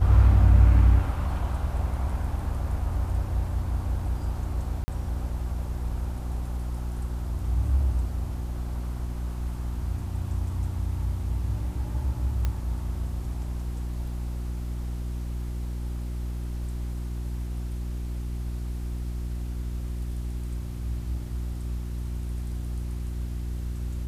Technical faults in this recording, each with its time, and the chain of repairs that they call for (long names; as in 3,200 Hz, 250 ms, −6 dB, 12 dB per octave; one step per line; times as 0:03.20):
mains hum 60 Hz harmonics 6 −31 dBFS
0:04.84–0:04.88: drop-out 40 ms
0:12.45: click −15 dBFS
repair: click removal
hum removal 60 Hz, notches 6
repair the gap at 0:04.84, 40 ms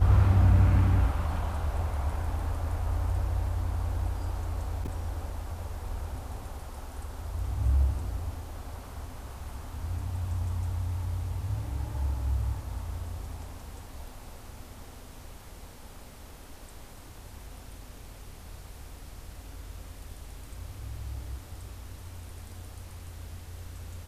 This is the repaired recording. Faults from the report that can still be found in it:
none of them is left